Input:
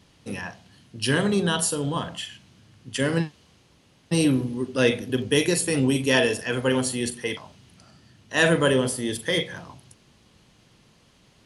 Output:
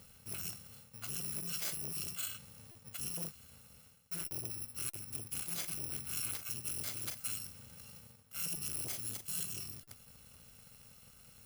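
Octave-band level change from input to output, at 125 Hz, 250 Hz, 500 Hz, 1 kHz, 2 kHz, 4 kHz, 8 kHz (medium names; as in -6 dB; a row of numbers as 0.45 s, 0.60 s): -21.0 dB, -28.5 dB, -33.0 dB, -23.0 dB, -24.5 dB, -17.0 dB, -8.0 dB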